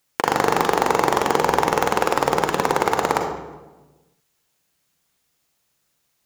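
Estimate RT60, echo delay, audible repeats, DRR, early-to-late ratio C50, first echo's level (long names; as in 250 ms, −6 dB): 1.2 s, no echo audible, no echo audible, 3.5 dB, 4.5 dB, no echo audible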